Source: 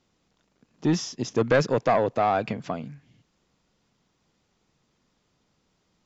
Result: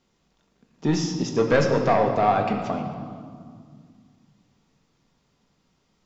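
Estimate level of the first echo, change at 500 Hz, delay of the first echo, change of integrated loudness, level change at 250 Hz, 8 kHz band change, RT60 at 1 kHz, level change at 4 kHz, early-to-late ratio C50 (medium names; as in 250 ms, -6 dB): no echo, +2.0 dB, no echo, +2.5 dB, +3.0 dB, no reading, 2.0 s, +2.0 dB, 5.5 dB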